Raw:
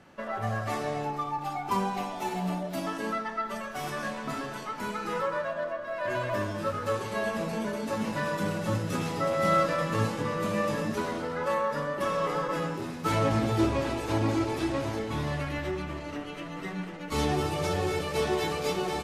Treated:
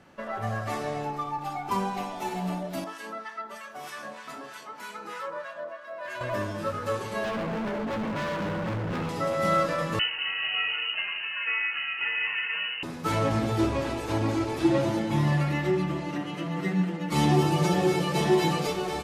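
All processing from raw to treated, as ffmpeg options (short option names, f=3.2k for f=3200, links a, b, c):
-filter_complex "[0:a]asettb=1/sr,asplit=3[a][b][c];[a]atrim=end=2.844[d];[b]atrim=start=2.84:end=6.21,asetpts=PTS-STARTPTS,afade=t=in:d=0.004:c=qsin,afade=t=out:st=3.366:d=0.004:c=qsin,highpass=f=580:p=1,acrossover=split=1100[e][f];[e]aeval=exprs='val(0)*(1-0.7/2+0.7/2*cos(2*PI*3.2*n/s))':c=same[g];[f]aeval=exprs='val(0)*(1-0.7/2-0.7/2*cos(2*PI*3.2*n/s))':c=same[h];[g][h]amix=inputs=2:normalize=0[i];[c]atrim=start=6.206[j];[d][i]acrossfade=d=0.004:c1=hsin:c2=qsin[k];[k][j]acrossfade=d=0.004:c1=qsin:c2=hsin,asettb=1/sr,asplit=3[l][m][n];[l]atrim=end=7.244[o];[m]atrim=start=7.24:end=9.09,asetpts=PTS-STARTPTS,afade=t=in:d=0.004:c=qsin,afade=t=out:st=1.846:d=0.004:c=qsin,lowpass=1.9k,acontrast=76,asoftclip=type=hard:threshold=-28.5dB[p];[n]atrim=start=9.086[q];[o][p]acrossfade=d=0.004:c1=hsin:c2=qsin[r];[r][q]acrossfade=d=0.004:c1=qsin:c2=hsin,asettb=1/sr,asplit=3[s][t][u];[s]atrim=end=9.994[v];[t]atrim=start=9.99:end=12.83,asetpts=PTS-STARTPTS,afade=t=in:d=0.004:c=qsin,afade=t=out:st=2.836:d=0.004:c=qsin,lowpass=f=2.6k:t=q:w=0.5098,lowpass=f=2.6k:t=q:w=0.6013,lowpass=f=2.6k:t=q:w=0.9,lowpass=f=2.6k:t=q:w=2.563,afreqshift=-3100,bandreject=f=2.3k:w=15[w];[u]atrim=start=12.826[x];[v][w]acrossfade=d=0.004:c1=hsin:c2=qsin[y];[y][x]acrossfade=d=0.004:c1=qsin:c2=hsin,asettb=1/sr,asplit=3[z][aa][ab];[z]atrim=end=14.644[ac];[aa]atrim=start=14.64:end=18.67,asetpts=PTS-STARTPTS,afade=t=in:d=0.004:c=qsin,afade=t=out:st=4.026:d=0.004:c=qsin,highpass=130,lowshelf=f=300:g=9,aecho=1:1:5.8:0.94,atrim=end_sample=177723[ad];[ab]atrim=start=18.666[ae];[ac][ad]acrossfade=d=0.004:c1=hsin:c2=qsin[af];[af][ae]acrossfade=d=0.004:c1=qsin:c2=hsin"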